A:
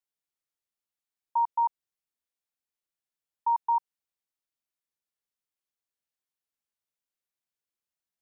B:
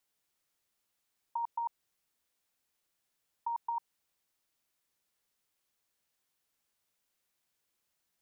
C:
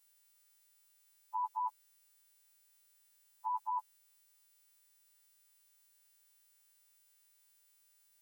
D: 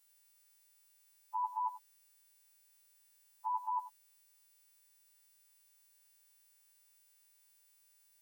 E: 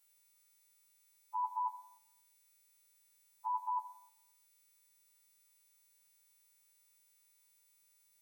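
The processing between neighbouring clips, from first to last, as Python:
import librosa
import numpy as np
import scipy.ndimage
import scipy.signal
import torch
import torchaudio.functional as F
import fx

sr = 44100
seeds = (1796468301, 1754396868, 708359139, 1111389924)

y1 = fx.over_compress(x, sr, threshold_db=-34.0, ratio=-1.0)
y2 = fx.freq_snap(y1, sr, grid_st=2)
y3 = y2 + 10.0 ** (-14.0 / 20.0) * np.pad(y2, (int(92 * sr / 1000.0), 0))[:len(y2)]
y4 = fx.room_shoebox(y3, sr, seeds[0], volume_m3=2500.0, walls='furnished', distance_m=1.3)
y4 = y4 * librosa.db_to_amplitude(-1.5)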